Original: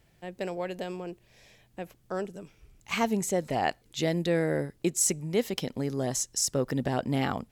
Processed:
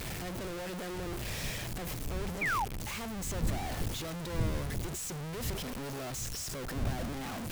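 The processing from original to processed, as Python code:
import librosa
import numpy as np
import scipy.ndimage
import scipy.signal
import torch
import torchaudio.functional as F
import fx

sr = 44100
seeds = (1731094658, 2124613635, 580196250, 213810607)

y = np.sign(x) * np.sqrt(np.mean(np.square(x)))
y = fx.dmg_wind(y, sr, seeds[0], corner_hz=110.0, level_db=-31.0)
y = fx.spec_paint(y, sr, seeds[1], shape='fall', start_s=2.41, length_s=0.24, low_hz=740.0, high_hz=2500.0, level_db=-23.0)
y = F.gain(torch.from_numpy(y), -8.0).numpy()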